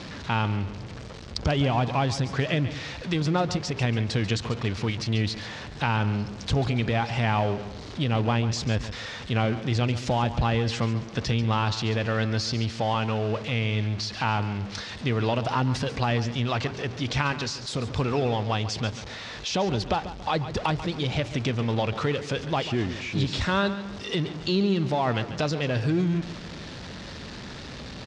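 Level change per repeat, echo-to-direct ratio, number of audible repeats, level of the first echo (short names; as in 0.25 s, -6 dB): -8.0 dB, -12.5 dB, 3, -13.0 dB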